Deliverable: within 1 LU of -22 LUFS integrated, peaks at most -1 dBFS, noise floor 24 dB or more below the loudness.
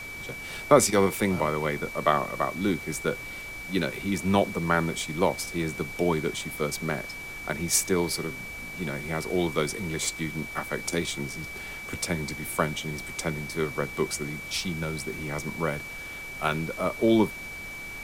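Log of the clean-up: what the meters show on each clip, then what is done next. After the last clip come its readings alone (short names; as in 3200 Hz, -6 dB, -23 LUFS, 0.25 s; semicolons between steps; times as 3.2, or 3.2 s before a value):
steady tone 2300 Hz; tone level -37 dBFS; noise floor -39 dBFS; noise floor target -52 dBFS; loudness -28.0 LUFS; peak -4.5 dBFS; loudness target -22.0 LUFS
-> notch 2300 Hz, Q 30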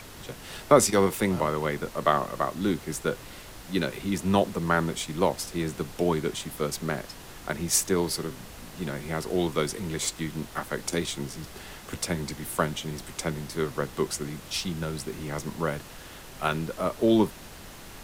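steady tone none; noise floor -45 dBFS; noise floor target -52 dBFS
-> noise print and reduce 7 dB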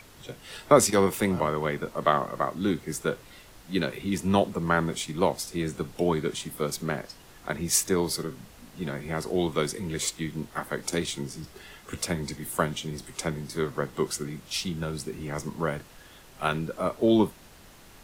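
noise floor -51 dBFS; noise floor target -52 dBFS
-> noise print and reduce 6 dB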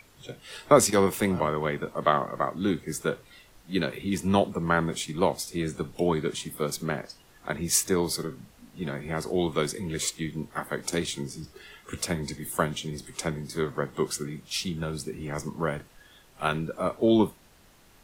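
noise floor -57 dBFS; loudness -28.0 LUFS; peak -5.0 dBFS; loudness target -22.0 LUFS
-> gain +6 dB; limiter -1 dBFS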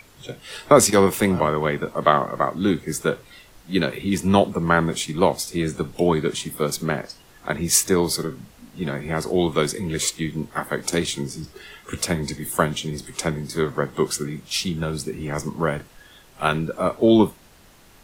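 loudness -22.5 LUFS; peak -1.0 dBFS; noise floor -51 dBFS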